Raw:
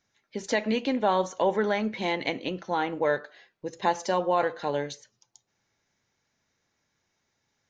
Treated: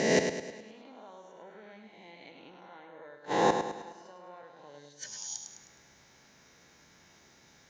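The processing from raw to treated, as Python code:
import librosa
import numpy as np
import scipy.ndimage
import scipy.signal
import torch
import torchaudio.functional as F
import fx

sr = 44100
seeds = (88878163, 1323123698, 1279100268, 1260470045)

p1 = fx.spec_swells(x, sr, rise_s=1.42)
p2 = fx.peak_eq(p1, sr, hz=100.0, db=-11.5, octaves=0.42)
p3 = fx.rider(p2, sr, range_db=4, speed_s=0.5)
p4 = fx.low_shelf(p3, sr, hz=130.0, db=5.0)
p5 = fx.gate_flip(p4, sr, shuts_db=-21.0, range_db=-36)
p6 = scipy.signal.sosfilt(scipy.signal.butter(2, 42.0, 'highpass', fs=sr, output='sos'), p5)
p7 = p6 + fx.echo_feedback(p6, sr, ms=104, feedback_pct=47, wet_db=-7, dry=0)
y = F.gain(torch.from_numpy(p7), 8.0).numpy()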